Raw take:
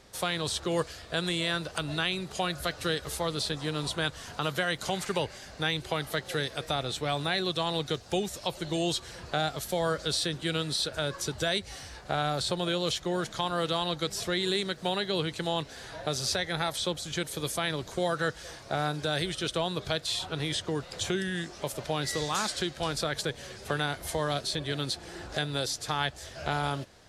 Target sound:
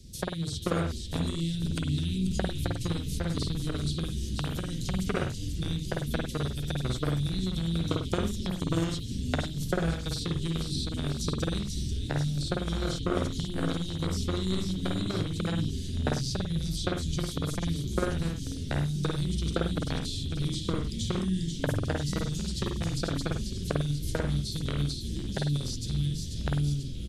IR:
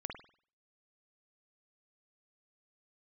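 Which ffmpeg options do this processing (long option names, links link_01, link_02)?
-filter_complex "[0:a]acrossover=split=340|6100[link_01][link_02][link_03];[link_01]acompressor=threshold=-38dB:ratio=4[link_04];[link_02]acompressor=threshold=-33dB:ratio=4[link_05];[link_03]acompressor=threshold=-49dB:ratio=4[link_06];[link_04][link_05][link_06]amix=inputs=3:normalize=0,lowshelf=frequency=690:width_type=q:width=1.5:gain=7.5,asplit=2[link_07][link_08];[link_08]acompressor=threshold=-37dB:ratio=4,volume=2.5dB[link_09];[link_07][link_09]amix=inputs=2:normalize=0,asplit=9[link_10][link_11][link_12][link_13][link_14][link_15][link_16][link_17][link_18];[link_11]adelay=489,afreqshift=-87,volume=-5.5dB[link_19];[link_12]adelay=978,afreqshift=-174,volume=-10.1dB[link_20];[link_13]adelay=1467,afreqshift=-261,volume=-14.7dB[link_21];[link_14]adelay=1956,afreqshift=-348,volume=-19.2dB[link_22];[link_15]adelay=2445,afreqshift=-435,volume=-23.8dB[link_23];[link_16]adelay=2934,afreqshift=-522,volume=-28.4dB[link_24];[link_17]adelay=3423,afreqshift=-609,volume=-33dB[link_25];[link_18]adelay=3912,afreqshift=-696,volume=-37.6dB[link_26];[link_10][link_19][link_20][link_21][link_22][link_23][link_24][link_25][link_26]amix=inputs=9:normalize=0,acrossover=split=250|3300[link_27][link_28][link_29];[link_28]acrusher=bits=2:mix=0:aa=0.5[link_30];[link_27][link_30][link_29]amix=inputs=3:normalize=0[link_31];[1:a]atrim=start_sample=2205,atrim=end_sample=6174[link_32];[link_31][link_32]afir=irnorm=-1:irlink=0"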